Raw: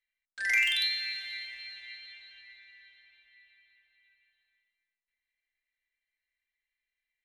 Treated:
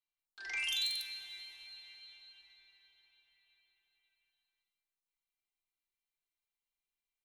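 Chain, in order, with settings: fixed phaser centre 370 Hz, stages 8; three bands offset in time mids, lows, highs 60/190 ms, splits 210/5100 Hz

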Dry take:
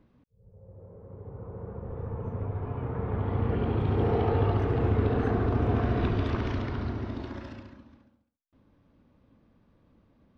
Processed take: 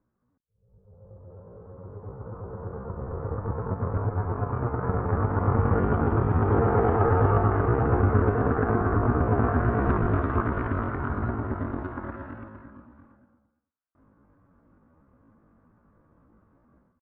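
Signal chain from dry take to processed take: AGC gain up to 16.5 dB; added harmonics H 6 -38 dB, 7 -24 dB, 8 -36 dB, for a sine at -1.5 dBFS; ladder low-pass 1600 Hz, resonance 50%; tempo 0.61×

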